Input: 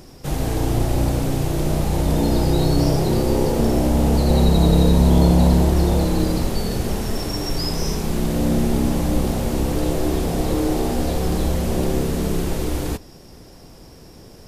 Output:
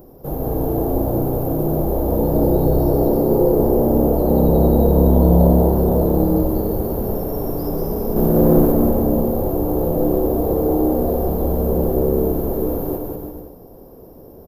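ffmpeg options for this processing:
-filter_complex "[0:a]firequalizer=gain_entry='entry(130,0);entry(470,9);entry(2000,-18);entry(8600,-20);entry(13000,12)':delay=0.05:min_phase=1,asettb=1/sr,asplit=3[s0][s1][s2];[s0]atrim=end=8.164[s3];[s1]atrim=start=8.16:end=8.72,asetpts=PTS-STARTPTS,afade=t=in:d=0.004:c=qsin,afade=t=out:st=0.556:d=0.004:c=qsin,acontrast=65[s4];[s2]atrim=start=8.716[s5];[s3][s4]acrossfade=d=0.004:c1=hsin:c2=qsin[s6];[s6][s5]acrossfade=d=0.004:c1=qsin:c2=hsin,asplit=2[s7][s8];[s8]aecho=0:1:190|332.5|439.4|519.5|579.6:0.631|0.398|0.251|0.158|0.1[s9];[s7][s9]amix=inputs=2:normalize=0,volume=0.668"

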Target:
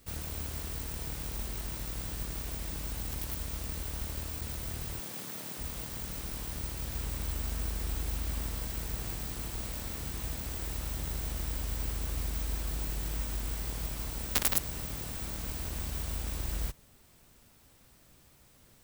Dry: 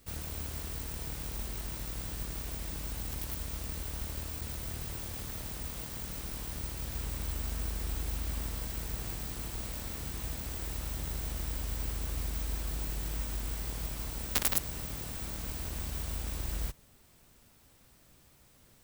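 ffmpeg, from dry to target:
-filter_complex "[0:a]asettb=1/sr,asplit=3[s0][s1][s2];[s0]atrim=end=5.004[s3];[s1]atrim=start=5:end=5.58,asetpts=PTS-STARTPTS,afade=t=in:d=0.004:c=qsin,afade=t=out:st=0.576:d=0.004:c=qsin,highpass=f=150:w=0.5412,highpass=f=150:w=1.3066[s4];[s2]atrim=start=5.576[s5];[s3][s4]acrossfade=d=0.004:c1=hsin:c2=qsin[s6];[s6][s5]acrossfade=d=0.004:c1=qsin:c2=hsin,volume=1.12"

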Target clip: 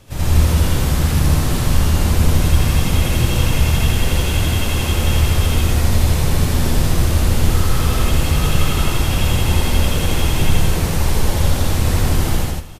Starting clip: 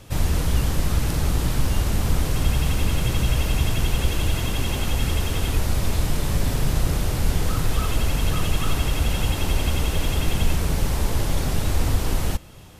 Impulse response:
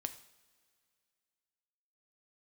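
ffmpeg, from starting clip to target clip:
-filter_complex "[0:a]aecho=1:1:67.06|154.5:0.708|0.891,asplit=2[s0][s1];[1:a]atrim=start_sample=2205,adelay=79[s2];[s1][s2]afir=irnorm=-1:irlink=0,volume=1.68[s3];[s0][s3]amix=inputs=2:normalize=0,volume=0.794"

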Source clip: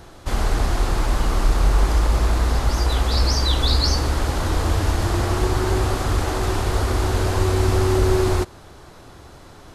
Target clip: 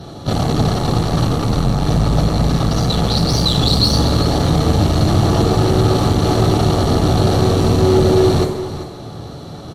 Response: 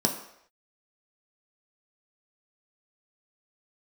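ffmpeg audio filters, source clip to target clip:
-filter_complex "[0:a]aeval=exprs='(tanh(17.8*val(0)+0.65)-tanh(0.65))/17.8':c=same,aecho=1:1:391:0.237[s0];[1:a]atrim=start_sample=2205,asetrate=32634,aresample=44100[s1];[s0][s1]afir=irnorm=-1:irlink=0,volume=0.891"

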